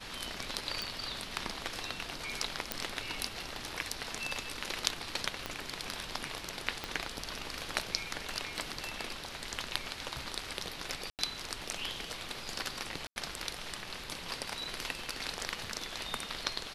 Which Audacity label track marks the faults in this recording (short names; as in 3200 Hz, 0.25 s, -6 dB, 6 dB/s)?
0.820000	0.820000	pop
2.720000	2.720000	pop -13 dBFS
5.460000	5.460000	pop -19 dBFS
6.840000	6.840000	pop -20 dBFS
11.100000	11.190000	gap 88 ms
13.070000	13.160000	gap 91 ms